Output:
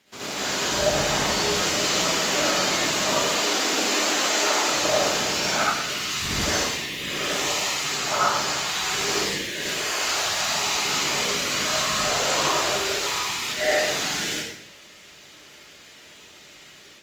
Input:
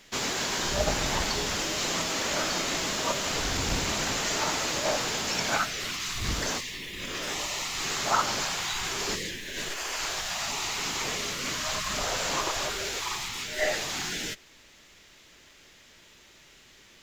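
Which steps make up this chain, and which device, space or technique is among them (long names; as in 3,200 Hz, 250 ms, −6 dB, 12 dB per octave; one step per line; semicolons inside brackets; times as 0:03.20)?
0:03.24–0:04.68: high-pass filter 240 Hz 24 dB per octave
far-field microphone of a smart speaker (convolution reverb RT60 0.80 s, pre-delay 57 ms, DRR −7.5 dB; high-pass filter 86 Hz 12 dB per octave; automatic gain control gain up to 7 dB; level −7 dB; Opus 32 kbit/s 48,000 Hz)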